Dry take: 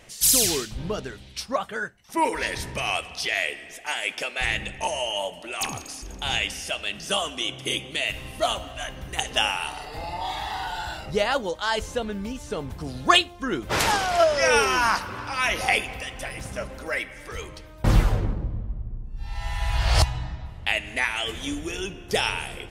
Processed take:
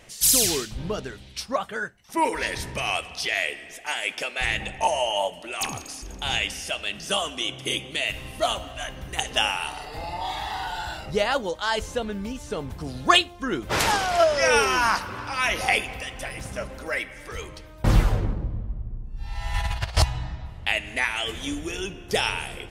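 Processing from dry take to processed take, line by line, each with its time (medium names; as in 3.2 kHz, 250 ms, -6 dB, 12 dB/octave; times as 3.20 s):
4.60–5.28 s: peaking EQ 780 Hz +7.5 dB 0.74 oct
19.54–19.97 s: compressor with a negative ratio -26 dBFS, ratio -0.5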